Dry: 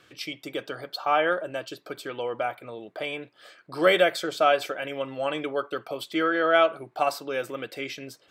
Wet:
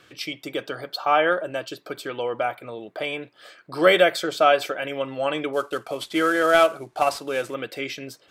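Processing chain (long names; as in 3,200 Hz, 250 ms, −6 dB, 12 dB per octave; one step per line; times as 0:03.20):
0:05.53–0:07.54: variable-slope delta modulation 64 kbit/s
level +3.5 dB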